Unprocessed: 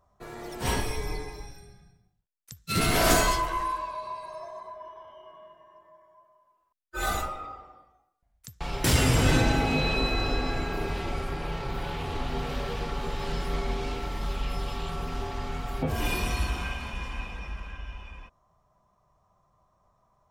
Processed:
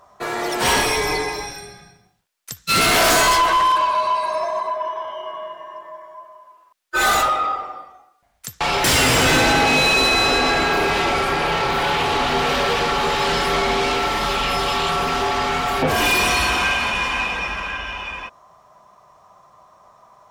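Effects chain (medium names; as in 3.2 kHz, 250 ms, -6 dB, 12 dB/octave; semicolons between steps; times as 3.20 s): overdrive pedal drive 27 dB, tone 6.5 kHz, clips at -8 dBFS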